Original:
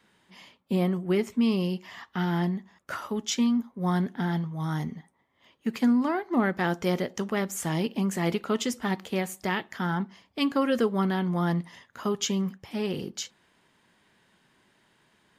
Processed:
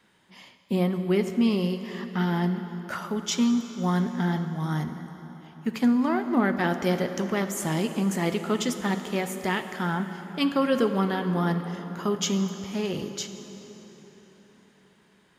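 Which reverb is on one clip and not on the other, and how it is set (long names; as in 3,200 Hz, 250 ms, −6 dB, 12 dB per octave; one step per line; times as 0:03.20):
dense smooth reverb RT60 4.4 s, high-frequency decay 0.7×, DRR 8 dB
level +1 dB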